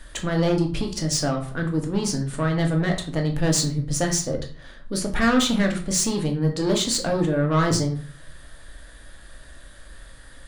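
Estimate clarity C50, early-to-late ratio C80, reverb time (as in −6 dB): 10.0 dB, 14.0 dB, 0.45 s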